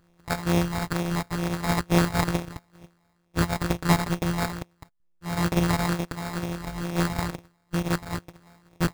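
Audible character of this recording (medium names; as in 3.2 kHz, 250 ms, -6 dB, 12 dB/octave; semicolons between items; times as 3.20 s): a buzz of ramps at a fixed pitch in blocks of 256 samples; tremolo saw down 0.6 Hz, depth 60%; phasing stages 12, 2.2 Hz, lowest notch 380–1300 Hz; aliases and images of a low sample rate 3 kHz, jitter 0%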